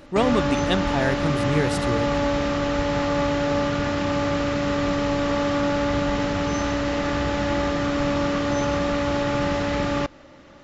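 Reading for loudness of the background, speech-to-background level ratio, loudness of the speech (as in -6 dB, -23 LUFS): -23.5 LUFS, -2.0 dB, -25.5 LUFS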